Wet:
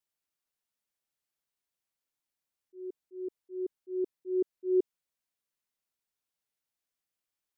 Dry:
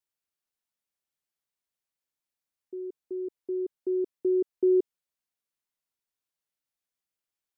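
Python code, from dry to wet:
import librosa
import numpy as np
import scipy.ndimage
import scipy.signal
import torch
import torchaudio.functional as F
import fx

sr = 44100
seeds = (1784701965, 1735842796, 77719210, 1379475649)

y = fx.auto_swell(x, sr, attack_ms=195.0)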